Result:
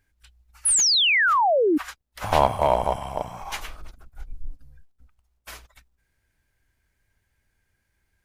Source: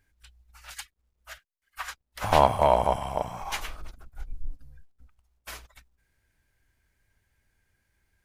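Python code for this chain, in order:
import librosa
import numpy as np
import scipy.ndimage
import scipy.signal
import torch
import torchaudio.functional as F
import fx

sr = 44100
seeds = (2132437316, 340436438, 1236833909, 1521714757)

p1 = fx.spec_paint(x, sr, seeds[0], shape='fall', start_s=0.65, length_s=1.13, low_hz=280.0, high_hz=11000.0, level_db=-19.0)
p2 = fx.schmitt(p1, sr, flips_db=-14.5)
y = p1 + (p2 * librosa.db_to_amplitude(-11.0))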